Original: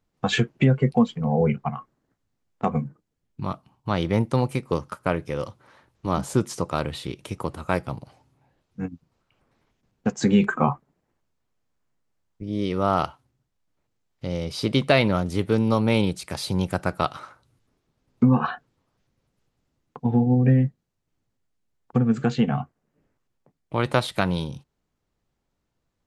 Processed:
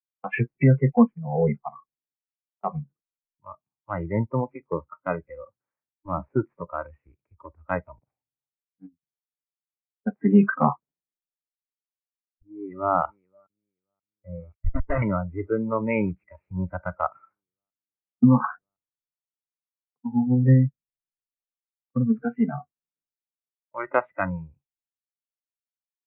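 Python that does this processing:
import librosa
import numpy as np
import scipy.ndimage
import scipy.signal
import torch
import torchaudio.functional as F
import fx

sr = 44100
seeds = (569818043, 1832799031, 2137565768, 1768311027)

y = fx.echo_throw(x, sr, start_s=12.43, length_s=0.5, ms=530, feedback_pct=75, wet_db=-14.5)
y = fx.schmitt(y, sr, flips_db=-17.5, at=(14.54, 15.02))
y = scipy.signal.sosfilt(scipy.signal.butter(16, 2500.0, 'lowpass', fs=sr, output='sos'), y)
y = fx.noise_reduce_blind(y, sr, reduce_db=23)
y = fx.band_widen(y, sr, depth_pct=70)
y = F.gain(torch.from_numpy(y), -2.0).numpy()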